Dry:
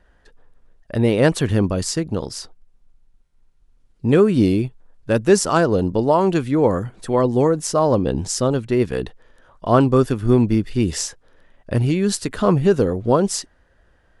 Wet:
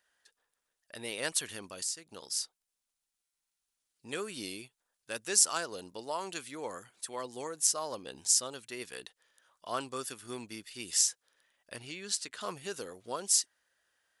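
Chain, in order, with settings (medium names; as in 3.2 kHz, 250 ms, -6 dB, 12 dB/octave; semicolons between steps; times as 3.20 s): differentiator; 1.54–2.12 s: compression 2:1, threshold -39 dBFS, peak gain reduction 9.5 dB; 11.76–12.41 s: distance through air 74 m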